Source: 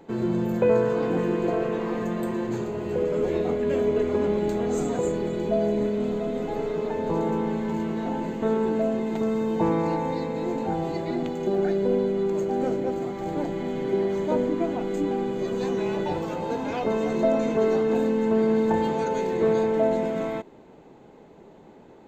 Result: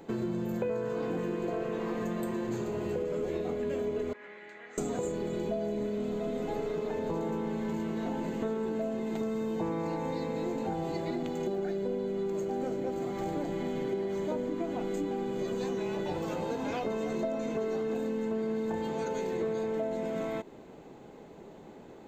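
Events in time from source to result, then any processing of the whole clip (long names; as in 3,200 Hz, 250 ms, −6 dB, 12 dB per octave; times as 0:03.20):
0:04.13–0:04.78: resonant band-pass 1,900 Hz, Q 4.8
whole clip: high-shelf EQ 5,600 Hz +6 dB; notch filter 900 Hz, Q 22; downward compressor, threshold −30 dBFS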